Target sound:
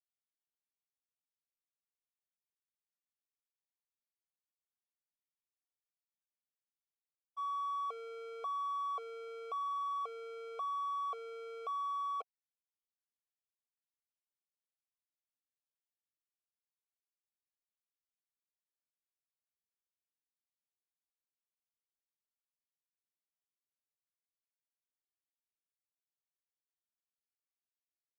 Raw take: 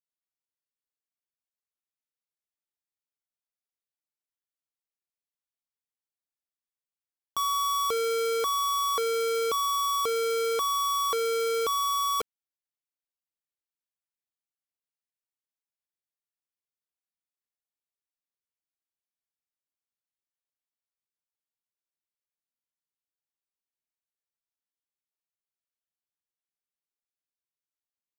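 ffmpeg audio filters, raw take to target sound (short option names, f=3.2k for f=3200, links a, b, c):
-filter_complex "[0:a]alimiter=level_in=13.5dB:limit=-24dB:level=0:latency=1,volume=-13.5dB,equalizer=f=740:w=1:g=5.5,agate=range=-33dB:threshold=-28dB:ratio=3:detection=peak,asplit=3[a][b][c];[a]bandpass=f=730:t=q:w=8,volume=0dB[d];[b]bandpass=f=1.09k:t=q:w=8,volume=-6dB[e];[c]bandpass=f=2.44k:t=q:w=8,volume=-9dB[f];[d][e][f]amix=inputs=3:normalize=0,volume=14.5dB"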